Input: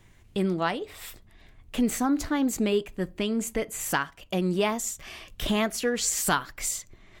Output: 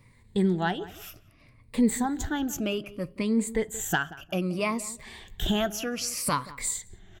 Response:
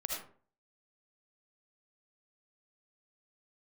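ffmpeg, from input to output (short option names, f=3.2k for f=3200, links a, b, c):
-filter_complex "[0:a]afftfilt=real='re*pow(10,13/40*sin(2*PI*(0.95*log(max(b,1)*sr/1024/100)/log(2)-(-0.63)*(pts-256)/sr)))':imag='im*pow(10,13/40*sin(2*PI*(0.95*log(max(b,1)*sr/1024/100)/log(2)-(-0.63)*(pts-256)/sr)))':win_size=1024:overlap=0.75,equalizer=f=120:w=0.77:g=6,asplit=2[a][b];[b]adelay=179,lowpass=f=1.8k:p=1,volume=-17dB,asplit=2[c][d];[d]adelay=179,lowpass=f=1.8k:p=1,volume=0.22[e];[c][e]amix=inputs=2:normalize=0[f];[a][f]amix=inputs=2:normalize=0,volume=-4dB"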